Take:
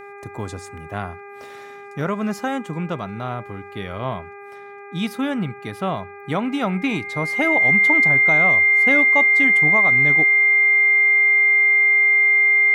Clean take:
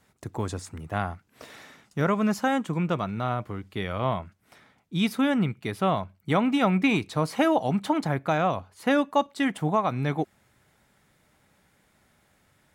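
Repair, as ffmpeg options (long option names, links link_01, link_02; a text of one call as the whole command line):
ffmpeg -i in.wav -af "bandreject=frequency=403.1:width_type=h:width=4,bandreject=frequency=806.2:width_type=h:width=4,bandreject=frequency=1209.3:width_type=h:width=4,bandreject=frequency=1612.4:width_type=h:width=4,bandreject=frequency=2015.5:width_type=h:width=4,bandreject=frequency=2418.6:width_type=h:width=4,bandreject=frequency=2100:width=30" out.wav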